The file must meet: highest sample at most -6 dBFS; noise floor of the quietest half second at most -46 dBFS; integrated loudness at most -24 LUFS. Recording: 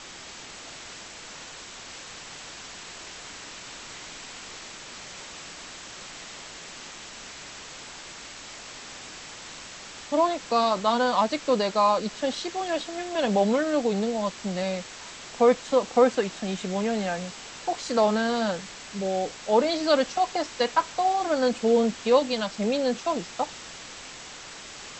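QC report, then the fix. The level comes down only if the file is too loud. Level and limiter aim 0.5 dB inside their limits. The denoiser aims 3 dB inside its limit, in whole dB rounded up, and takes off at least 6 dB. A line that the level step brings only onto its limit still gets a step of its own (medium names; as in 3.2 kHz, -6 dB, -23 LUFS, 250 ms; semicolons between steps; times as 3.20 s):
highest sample -7.5 dBFS: pass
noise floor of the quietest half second -43 dBFS: fail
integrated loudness -25.5 LUFS: pass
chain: noise reduction 6 dB, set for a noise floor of -43 dBFS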